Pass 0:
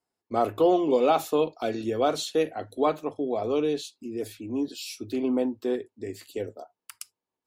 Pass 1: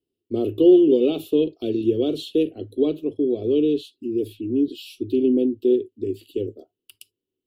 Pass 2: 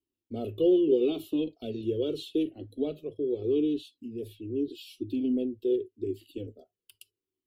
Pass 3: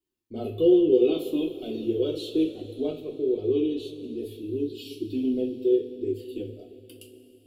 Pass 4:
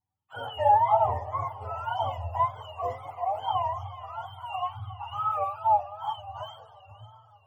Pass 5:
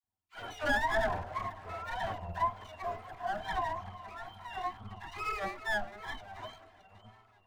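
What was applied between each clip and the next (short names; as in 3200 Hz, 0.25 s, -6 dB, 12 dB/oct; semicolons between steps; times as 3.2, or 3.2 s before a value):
EQ curve 110 Hz 0 dB, 190 Hz -5 dB, 370 Hz +5 dB, 840 Hz -29 dB, 2000 Hz -28 dB, 2900 Hz -1 dB, 6300 Hz -22 dB, 12000 Hz -10 dB; gain +7 dB
cascading flanger falling 0.81 Hz; gain -2.5 dB
two-slope reverb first 0.28 s, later 3.7 s, from -18 dB, DRR -1.5 dB
spectrum mirrored in octaves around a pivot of 560 Hz; wow and flutter 110 cents
minimum comb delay 2.9 ms; dispersion lows, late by 40 ms, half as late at 840 Hz; gain -5 dB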